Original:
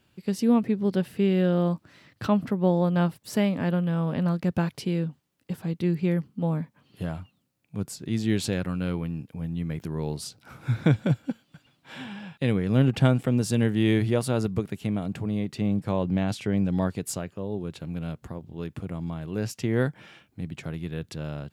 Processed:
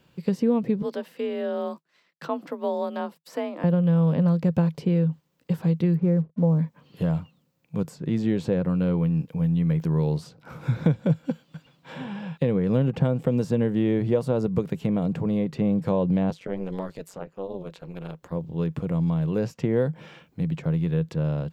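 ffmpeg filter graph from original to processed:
ffmpeg -i in.wav -filter_complex "[0:a]asettb=1/sr,asplit=3[link_01][link_02][link_03];[link_01]atrim=end=0.824[link_04];[link_02]atrim=start=0.82:end=3.64,asetpts=PTS-STARTPTS,afade=type=in:duration=0.004:curve=qsin,afade=type=out:start_time=2.816:duration=0.004:curve=qsin,highpass=frequency=1100:poles=1,agate=range=-33dB:threshold=-49dB:ratio=3:release=100:detection=peak,afreqshift=44[link_05];[link_03]atrim=start=3.636[link_06];[link_04][link_05]acrossfade=duration=0.004:curve1=hsin:curve2=qsin[link_07];[link_07][link_06]acrossfade=duration=0.004:curve1=qsin:curve2=hsin,asettb=1/sr,asplit=3[link_08][link_09][link_10];[link_08]atrim=end=5.964[link_11];[link_09]atrim=start=5.96:end=6.59,asetpts=PTS-STARTPTS,afade=type=in:duration=0.004:curve=qsin,afade=type=out:start_time=0.626:duration=0.004:curve=qsin,lowpass=1000,aeval=exprs='sgn(val(0))*max(abs(val(0))-0.00158,0)':channel_layout=same[link_12];[link_10]atrim=start=6.586[link_13];[link_11][link_12]acrossfade=duration=0.004:curve1=hsin:curve2=qsin[link_14];[link_14][link_13]acrossfade=duration=0.004:curve1=qsin:curve2=hsin,asettb=1/sr,asplit=3[link_15][link_16][link_17];[link_15]atrim=end=16.304[link_18];[link_16]atrim=start=16.3:end=18.32,asetpts=PTS-STARTPTS,afade=type=in:duration=0.004:curve=qsin,afade=type=out:start_time=2.016:duration=0.004:curve=qsin,highpass=frequency=480:poles=1,tremolo=f=190:d=1[link_19];[link_17]atrim=start=18.316[link_20];[link_18][link_19]acrossfade=duration=0.004:curve1=hsin:curve2=qsin[link_21];[link_21][link_20]acrossfade=duration=0.004:curve1=qsin:curve2=hsin,equalizer=frequency=100:width_type=o:width=0.33:gain=-6,equalizer=frequency=160:width_type=o:width=0.33:gain=10,equalizer=frequency=500:width_type=o:width=0.33:gain=9,equalizer=frequency=1000:width_type=o:width=0.33:gain=5,equalizer=frequency=10000:width_type=o:width=0.33:gain=-9,acrossover=split=1000|2200[link_22][link_23][link_24];[link_22]acompressor=threshold=-22dB:ratio=4[link_25];[link_23]acompressor=threshold=-50dB:ratio=4[link_26];[link_24]acompressor=threshold=-54dB:ratio=4[link_27];[link_25][link_26][link_27]amix=inputs=3:normalize=0,volume=3dB" out.wav

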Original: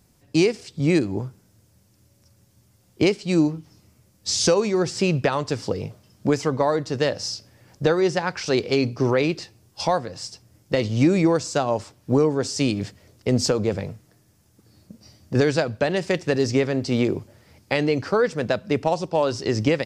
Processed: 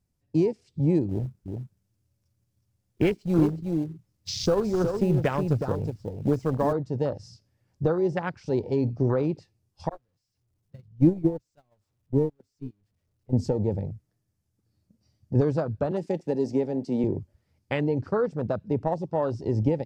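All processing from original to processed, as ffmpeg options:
ffmpeg -i in.wav -filter_complex "[0:a]asettb=1/sr,asplit=3[link_01][link_02][link_03];[link_01]atrim=end=1.094[link_04];[link_02]atrim=start=1.09:end=6.73,asetpts=PTS-STARTPTS,afade=type=in:duration=0.004:curve=qsin,afade=type=out:start_time=5.636:duration=0.004:curve=qsin,acrusher=bits=2:mode=log:mix=0:aa=0.000001,aecho=1:1:367:0.531,atrim=end_sample=248724[link_05];[link_03]atrim=start=6.726[link_06];[link_04][link_05]acrossfade=duration=0.004:curve1=hsin:curve2=qsin[link_07];[link_07][link_06]acrossfade=duration=0.004:curve1=qsin:curve2=hsin,asettb=1/sr,asplit=3[link_08][link_09][link_10];[link_08]atrim=end=9.894[link_11];[link_09]atrim=start=9.89:end=13.33,asetpts=PTS-STARTPTS,afade=type=in:duration=0.004:curve=qsin,afade=type=out:start_time=3.436:duration=0.004:curve=qsin,aeval=exprs='val(0)+0.5*0.0794*sgn(val(0))':channel_layout=same,agate=range=-34dB:threshold=-15dB:ratio=16:release=100:detection=peak,lowshelf=frequency=240:gain=5.5[link_12];[link_10]atrim=start=13.326[link_13];[link_11][link_12]acrossfade=duration=0.004:curve1=hsin:curve2=qsin[link_14];[link_14][link_13]acrossfade=duration=0.004:curve1=qsin:curve2=hsin,asettb=1/sr,asplit=3[link_15][link_16][link_17];[link_15]atrim=end=15.914[link_18];[link_16]atrim=start=15.91:end=17.04,asetpts=PTS-STARTPTS,afade=type=in:duration=0.004:curve=qsin,afade=type=out:start_time=1.126:duration=0.004:curve=qsin,highpass=frequency=170:width=0.5412,highpass=frequency=170:width=1.3066,highshelf=frequency=6700:gain=7[link_19];[link_17]atrim=start=17.036[link_20];[link_18][link_19]acrossfade=duration=0.004:curve1=hsin:curve2=qsin[link_21];[link_21][link_20]acrossfade=duration=0.004:curve1=qsin:curve2=hsin,lowshelf=frequency=140:gain=11.5,afwtdn=0.0562,volume=-6dB" out.wav

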